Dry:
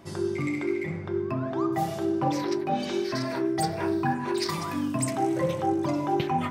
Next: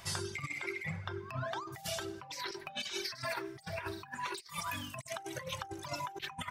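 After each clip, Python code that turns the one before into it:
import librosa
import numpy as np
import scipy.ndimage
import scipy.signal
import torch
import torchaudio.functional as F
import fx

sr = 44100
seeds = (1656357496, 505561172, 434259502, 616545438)

y = fx.dereverb_blind(x, sr, rt60_s=1.5)
y = fx.tone_stack(y, sr, knobs='10-0-10')
y = fx.over_compress(y, sr, threshold_db=-46.0, ratio=-0.5)
y = y * librosa.db_to_amplitude(6.0)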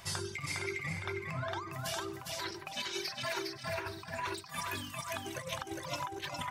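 y = fx.echo_feedback(x, sr, ms=408, feedback_pct=23, wet_db=-3.5)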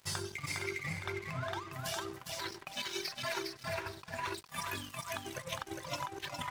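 y = np.sign(x) * np.maximum(np.abs(x) - 10.0 ** (-49.0 / 20.0), 0.0)
y = y * librosa.db_to_amplitude(1.0)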